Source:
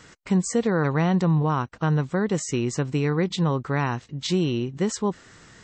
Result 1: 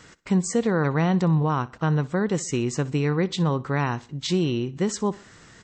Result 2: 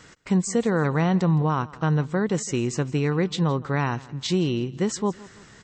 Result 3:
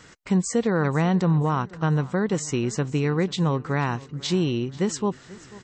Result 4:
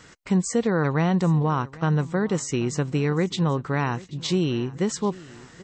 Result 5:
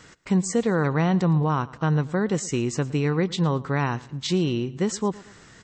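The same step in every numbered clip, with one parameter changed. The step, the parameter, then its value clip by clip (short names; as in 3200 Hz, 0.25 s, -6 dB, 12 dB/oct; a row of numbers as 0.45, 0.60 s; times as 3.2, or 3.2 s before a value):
feedback echo, time: 62, 164, 489, 785, 112 ms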